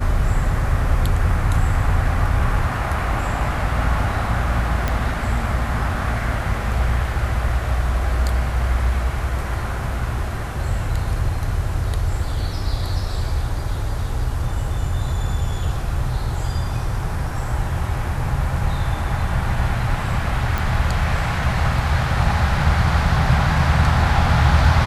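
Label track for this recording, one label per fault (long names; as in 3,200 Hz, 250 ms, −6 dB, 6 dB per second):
4.880000	4.880000	click −8 dBFS
20.580000	20.580000	click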